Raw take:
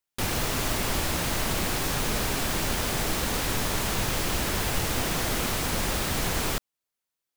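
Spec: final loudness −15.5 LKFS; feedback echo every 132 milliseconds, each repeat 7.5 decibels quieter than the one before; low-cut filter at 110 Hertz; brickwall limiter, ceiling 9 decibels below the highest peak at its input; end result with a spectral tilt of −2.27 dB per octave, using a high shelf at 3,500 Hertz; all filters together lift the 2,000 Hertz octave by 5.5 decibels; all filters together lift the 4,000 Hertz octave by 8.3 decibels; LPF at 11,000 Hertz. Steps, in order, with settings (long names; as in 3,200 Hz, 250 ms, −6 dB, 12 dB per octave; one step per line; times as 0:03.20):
high-pass filter 110 Hz
low-pass filter 11,000 Hz
parametric band 2,000 Hz +3.5 dB
high-shelf EQ 3,500 Hz +6.5 dB
parametric band 4,000 Hz +5 dB
brickwall limiter −20 dBFS
repeating echo 132 ms, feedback 42%, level −7.5 dB
level +11 dB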